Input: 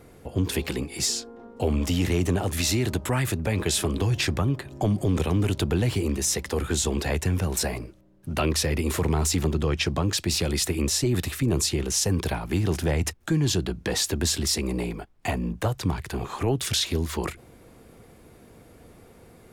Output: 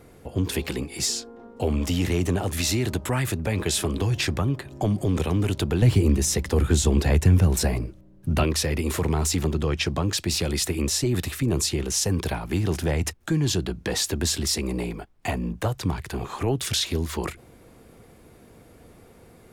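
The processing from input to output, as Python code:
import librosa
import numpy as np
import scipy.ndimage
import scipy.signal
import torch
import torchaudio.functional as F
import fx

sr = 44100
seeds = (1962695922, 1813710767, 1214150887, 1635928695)

y = fx.low_shelf(x, sr, hz=280.0, db=9.5, at=(5.82, 8.44))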